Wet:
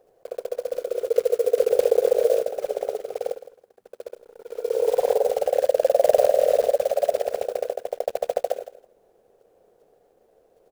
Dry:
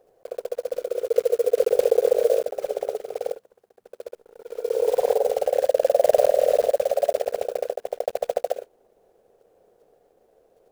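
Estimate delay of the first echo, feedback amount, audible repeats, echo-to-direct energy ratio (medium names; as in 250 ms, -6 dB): 163 ms, 16%, 2, -15.0 dB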